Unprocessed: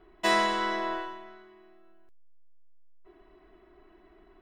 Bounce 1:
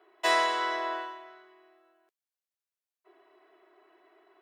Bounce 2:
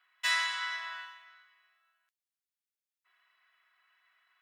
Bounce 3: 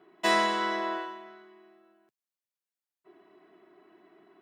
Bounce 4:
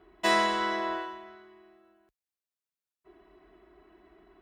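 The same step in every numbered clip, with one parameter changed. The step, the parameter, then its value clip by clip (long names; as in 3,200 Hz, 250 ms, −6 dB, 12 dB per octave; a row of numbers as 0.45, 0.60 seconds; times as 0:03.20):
high-pass filter, corner frequency: 410, 1,400, 140, 40 Hertz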